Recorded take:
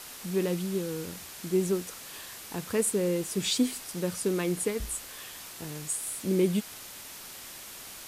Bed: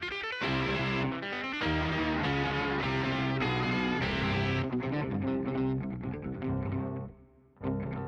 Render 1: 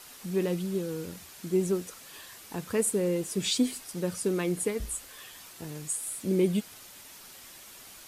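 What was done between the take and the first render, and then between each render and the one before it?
denoiser 6 dB, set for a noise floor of -45 dBFS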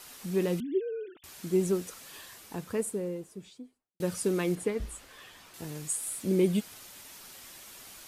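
0.6–1.24 sine-wave speech; 2.05–4 studio fade out; 4.55–5.54 bell 13000 Hz -12 dB 1.9 oct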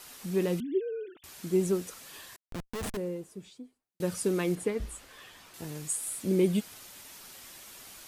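2.36–2.97 Schmitt trigger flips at -33 dBFS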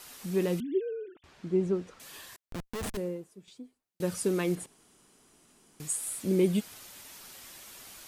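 0.93–2 tape spacing loss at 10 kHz 25 dB; 2.93–3.48 three-band expander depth 100%; 4.66–5.8 room tone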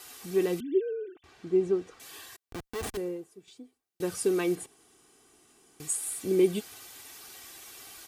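HPF 77 Hz 6 dB/oct; comb 2.6 ms, depth 52%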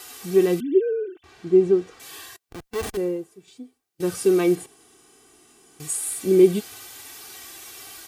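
harmonic-percussive split harmonic +9 dB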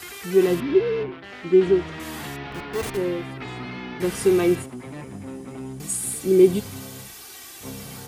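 add bed -4.5 dB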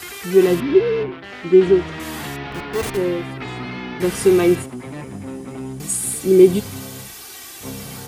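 gain +4.5 dB; limiter -1 dBFS, peak gain reduction 1 dB

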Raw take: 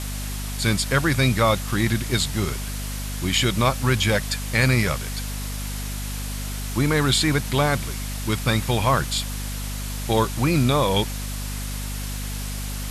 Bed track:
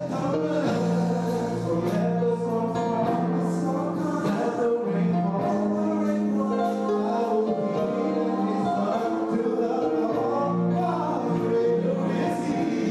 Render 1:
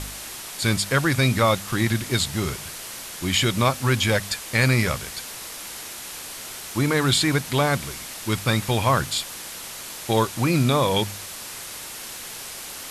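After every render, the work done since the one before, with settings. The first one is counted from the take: de-hum 50 Hz, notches 5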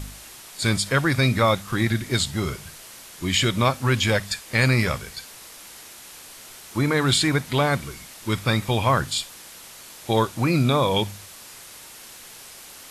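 noise print and reduce 7 dB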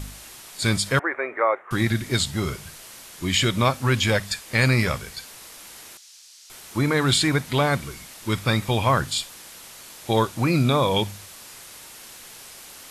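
0.99–1.71 elliptic band-pass 380–2000 Hz; 5.97–6.5 band-pass 5400 Hz, Q 1.7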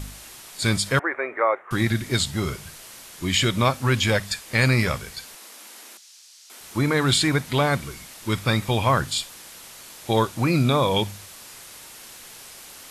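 5.35–6.61 Chebyshev high-pass 200 Hz, order 6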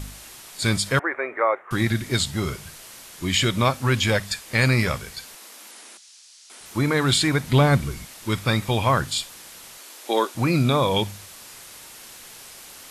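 5.71–6.66 careless resampling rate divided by 2×, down none, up filtered; 7.43–8.05 low shelf 270 Hz +10 dB; 9.78–10.35 steep high-pass 260 Hz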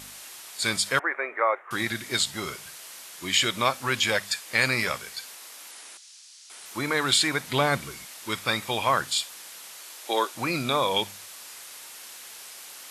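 HPF 700 Hz 6 dB/oct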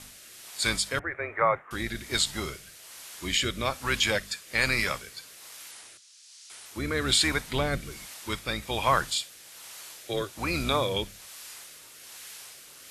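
octaver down 2 oct, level -2 dB; rotary speaker horn 1.2 Hz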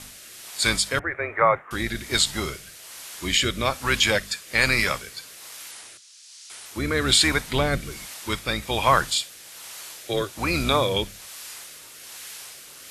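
gain +5 dB

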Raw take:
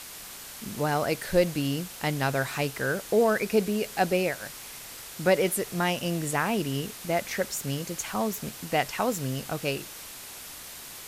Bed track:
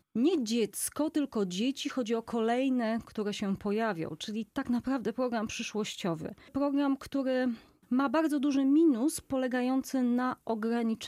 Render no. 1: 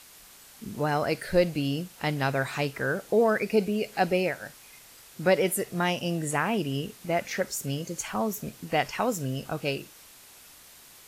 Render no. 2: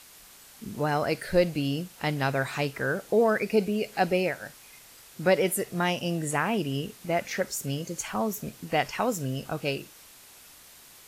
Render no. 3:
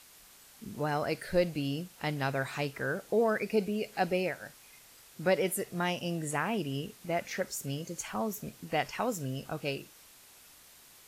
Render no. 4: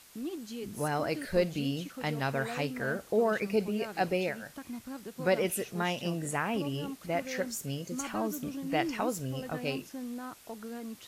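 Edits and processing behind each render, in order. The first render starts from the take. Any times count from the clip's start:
noise print and reduce 9 dB
nothing audible
gain -5 dB
add bed track -11 dB

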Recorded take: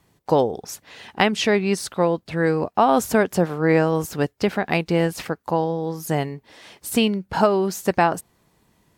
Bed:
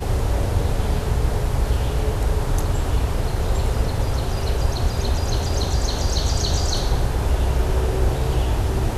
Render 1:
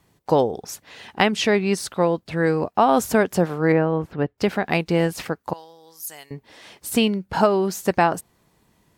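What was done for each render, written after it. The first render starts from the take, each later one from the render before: 3.72–4.38 air absorption 470 m; 5.53–6.31 differentiator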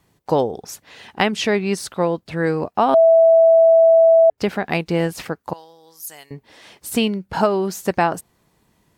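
2.94–4.3 bleep 657 Hz -8 dBFS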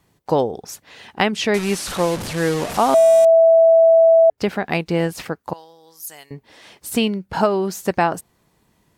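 1.54–3.25 delta modulation 64 kbps, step -22 dBFS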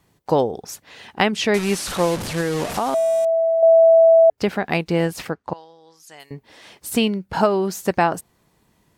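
2.4–3.63 compressor, threshold -17 dBFS; 5.31–6.2 air absorption 99 m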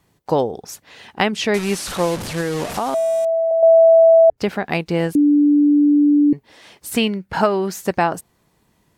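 3.51–4.37 RIAA curve playback; 5.15–6.33 bleep 292 Hz -10 dBFS; 6.89–7.84 bell 1900 Hz +5.5 dB 0.97 oct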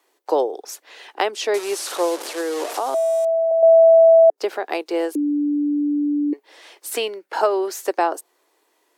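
steep high-pass 320 Hz 48 dB/oct; dynamic EQ 2200 Hz, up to -7 dB, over -35 dBFS, Q 1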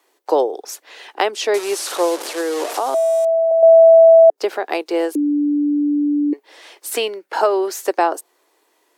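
gain +3 dB; limiter -3 dBFS, peak gain reduction 1.5 dB

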